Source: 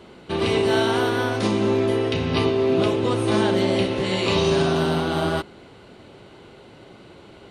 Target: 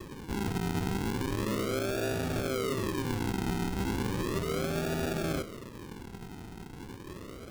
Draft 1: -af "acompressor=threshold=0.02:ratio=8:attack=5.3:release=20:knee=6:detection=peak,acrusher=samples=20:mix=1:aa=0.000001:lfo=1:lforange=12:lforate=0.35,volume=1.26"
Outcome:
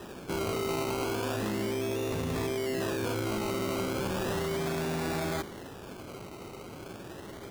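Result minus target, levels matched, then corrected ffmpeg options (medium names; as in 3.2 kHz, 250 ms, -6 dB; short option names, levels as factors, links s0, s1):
decimation with a swept rate: distortion -15 dB
-af "acompressor=threshold=0.02:ratio=8:attack=5.3:release=20:knee=6:detection=peak,acrusher=samples=60:mix=1:aa=0.000001:lfo=1:lforange=36:lforate=0.35,volume=1.26"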